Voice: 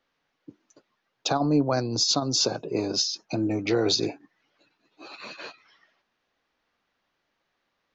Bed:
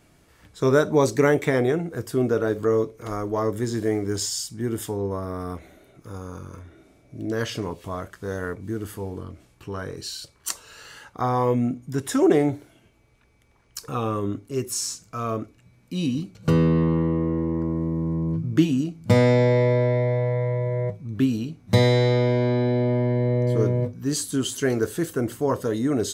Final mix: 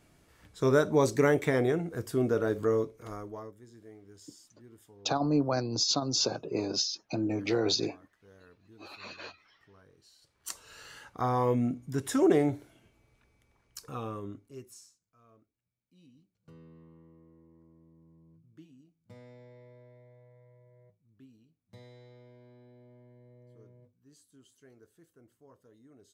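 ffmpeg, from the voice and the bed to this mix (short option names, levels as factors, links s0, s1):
-filter_complex "[0:a]adelay=3800,volume=0.596[s0];[1:a]volume=6.68,afade=t=out:st=2.66:d=0.89:silence=0.0794328,afade=t=in:st=10.21:d=0.54:silence=0.0794328,afade=t=out:st=13.08:d=1.84:silence=0.0334965[s1];[s0][s1]amix=inputs=2:normalize=0"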